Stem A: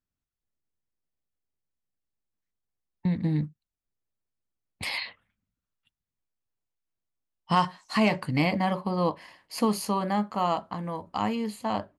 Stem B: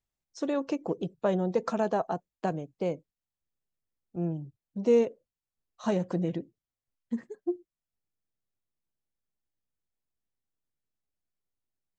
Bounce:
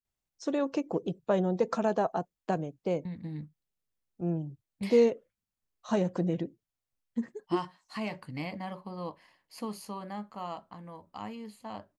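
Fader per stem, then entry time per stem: -12.5 dB, 0.0 dB; 0.00 s, 0.05 s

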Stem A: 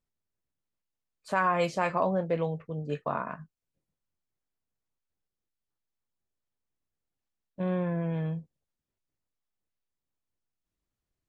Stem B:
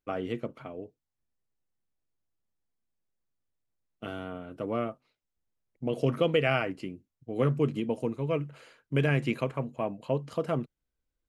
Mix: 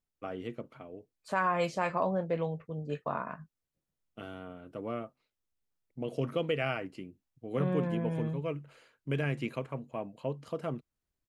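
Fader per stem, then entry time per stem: -3.0 dB, -6.0 dB; 0.00 s, 0.15 s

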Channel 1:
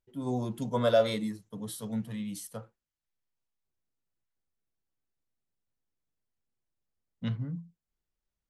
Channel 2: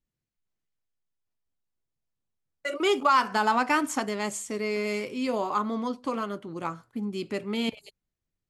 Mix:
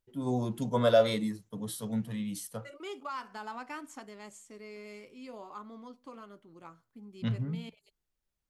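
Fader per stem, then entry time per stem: +1.0 dB, -17.5 dB; 0.00 s, 0.00 s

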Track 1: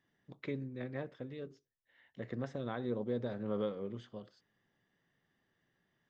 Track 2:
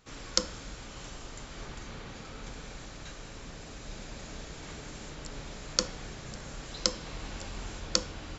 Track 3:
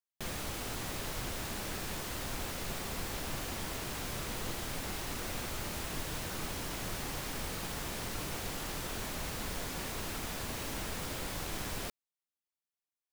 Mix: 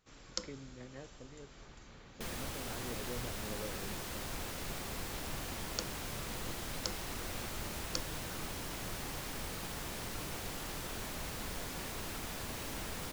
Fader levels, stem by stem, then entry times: -9.0 dB, -12.0 dB, -3.0 dB; 0.00 s, 0.00 s, 2.00 s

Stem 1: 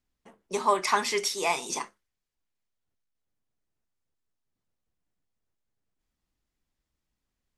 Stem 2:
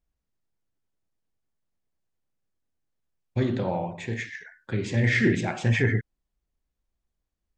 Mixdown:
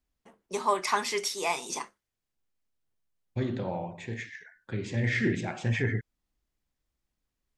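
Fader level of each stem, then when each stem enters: -2.5 dB, -5.5 dB; 0.00 s, 0.00 s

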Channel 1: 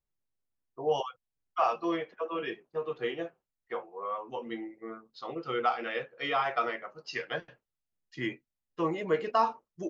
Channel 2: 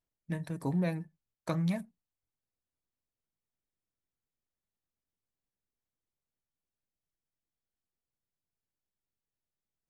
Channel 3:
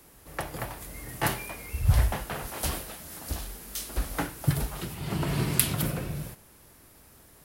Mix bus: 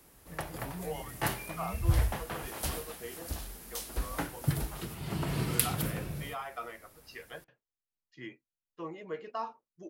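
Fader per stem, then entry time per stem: -11.0 dB, -13.0 dB, -4.5 dB; 0.00 s, 0.00 s, 0.00 s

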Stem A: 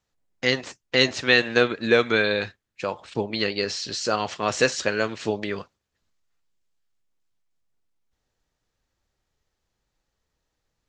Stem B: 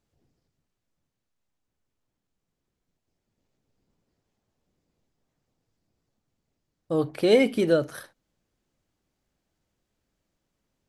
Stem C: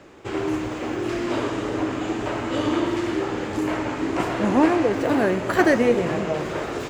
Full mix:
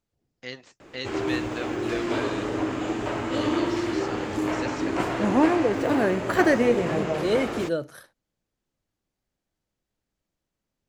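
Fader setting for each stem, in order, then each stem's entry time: -15.5 dB, -5.5 dB, -2.0 dB; 0.00 s, 0.00 s, 0.80 s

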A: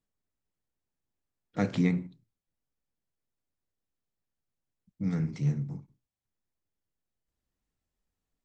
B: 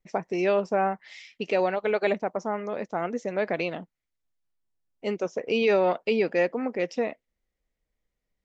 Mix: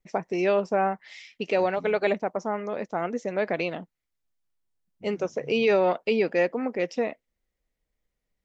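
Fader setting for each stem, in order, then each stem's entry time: -19.0 dB, +0.5 dB; 0.00 s, 0.00 s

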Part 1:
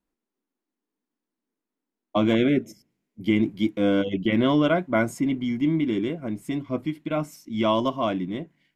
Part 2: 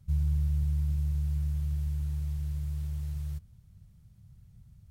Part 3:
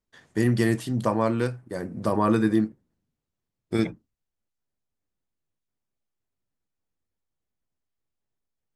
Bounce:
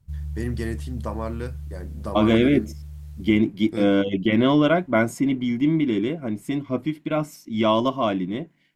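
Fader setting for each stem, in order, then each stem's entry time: +2.5 dB, -4.0 dB, -7.0 dB; 0.00 s, 0.00 s, 0.00 s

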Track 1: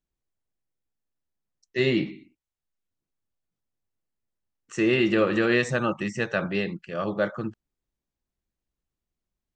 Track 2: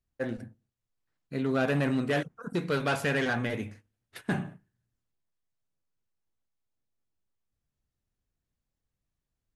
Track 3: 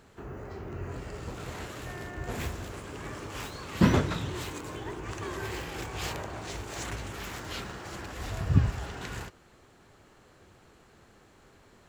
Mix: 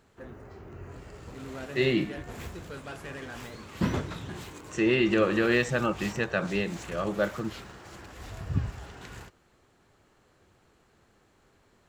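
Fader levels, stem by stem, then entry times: -2.0 dB, -13.5 dB, -6.0 dB; 0.00 s, 0.00 s, 0.00 s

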